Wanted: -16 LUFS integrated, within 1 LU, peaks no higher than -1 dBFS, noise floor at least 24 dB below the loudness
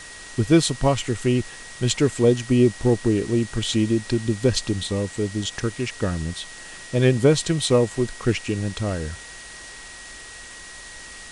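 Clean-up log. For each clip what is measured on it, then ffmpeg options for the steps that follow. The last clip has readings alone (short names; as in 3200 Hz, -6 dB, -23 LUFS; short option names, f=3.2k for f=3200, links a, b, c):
steady tone 1900 Hz; tone level -42 dBFS; noise floor -40 dBFS; noise floor target -46 dBFS; loudness -22.0 LUFS; peak -4.5 dBFS; loudness target -16.0 LUFS
-> -af "bandreject=f=1.9k:w=30"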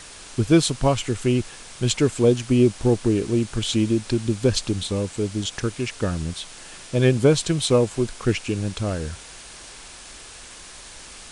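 steady tone none; noise floor -42 dBFS; noise floor target -46 dBFS
-> -af "afftdn=nr=6:nf=-42"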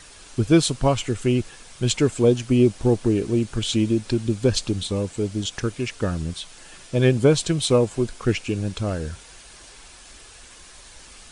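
noise floor -46 dBFS; noise floor target -47 dBFS
-> -af "afftdn=nr=6:nf=-46"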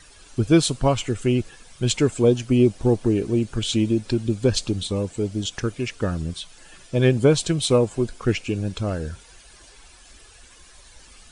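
noise floor -49 dBFS; loudness -22.5 LUFS; peak -4.5 dBFS; loudness target -16.0 LUFS
-> -af "volume=6.5dB,alimiter=limit=-1dB:level=0:latency=1"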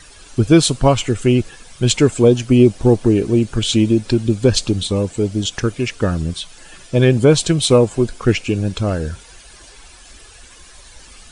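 loudness -16.0 LUFS; peak -1.0 dBFS; noise floor -43 dBFS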